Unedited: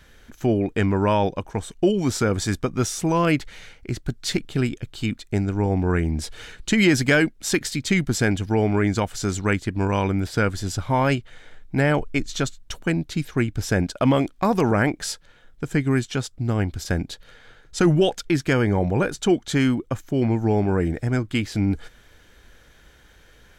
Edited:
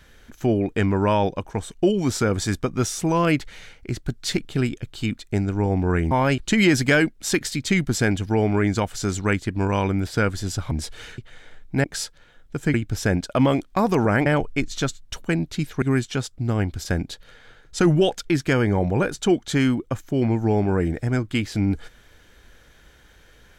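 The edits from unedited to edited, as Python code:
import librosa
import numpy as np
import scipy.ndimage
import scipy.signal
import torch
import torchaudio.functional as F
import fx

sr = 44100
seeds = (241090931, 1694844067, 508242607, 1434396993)

y = fx.edit(x, sr, fx.swap(start_s=6.11, length_s=0.47, other_s=10.91, other_length_s=0.27),
    fx.swap(start_s=11.84, length_s=1.56, other_s=14.92, other_length_s=0.9), tone=tone)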